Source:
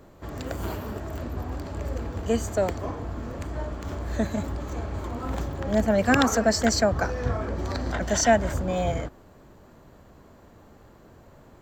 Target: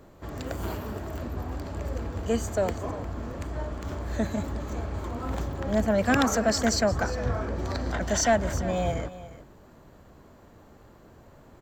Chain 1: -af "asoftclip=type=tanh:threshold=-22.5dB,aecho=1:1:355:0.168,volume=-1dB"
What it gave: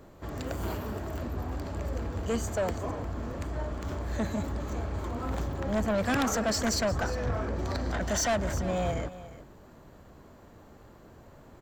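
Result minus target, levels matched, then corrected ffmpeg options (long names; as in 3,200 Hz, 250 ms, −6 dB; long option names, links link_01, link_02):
soft clipping: distortion +11 dB
-af "asoftclip=type=tanh:threshold=-12.5dB,aecho=1:1:355:0.168,volume=-1dB"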